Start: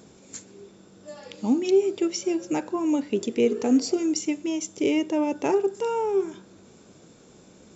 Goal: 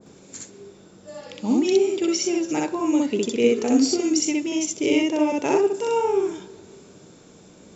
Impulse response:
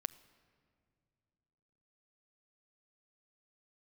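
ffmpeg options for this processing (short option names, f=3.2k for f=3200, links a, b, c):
-filter_complex "[0:a]asplit=2[a][b];[1:a]atrim=start_sample=2205,adelay=63[c];[b][c]afir=irnorm=-1:irlink=0,volume=1.5dB[d];[a][d]amix=inputs=2:normalize=0,adynamicequalizer=threshold=0.0126:dfrequency=1600:dqfactor=0.7:tfrequency=1600:tqfactor=0.7:attack=5:release=100:ratio=0.375:range=2:mode=boostabove:tftype=highshelf"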